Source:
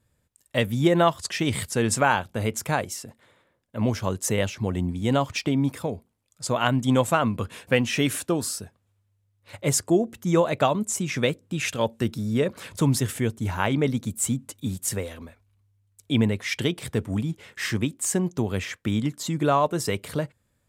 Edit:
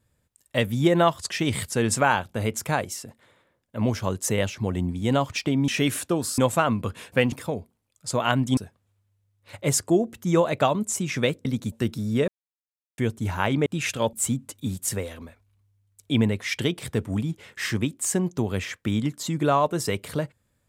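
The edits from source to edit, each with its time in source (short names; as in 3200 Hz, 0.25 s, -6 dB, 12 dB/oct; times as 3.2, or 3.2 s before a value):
5.68–6.93 swap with 7.87–8.57
11.45–11.92 swap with 13.86–14.13
12.48–13.18 mute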